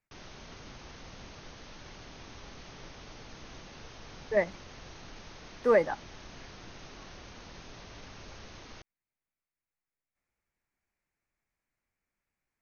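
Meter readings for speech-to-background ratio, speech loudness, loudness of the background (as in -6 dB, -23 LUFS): 20.0 dB, -28.5 LUFS, -48.5 LUFS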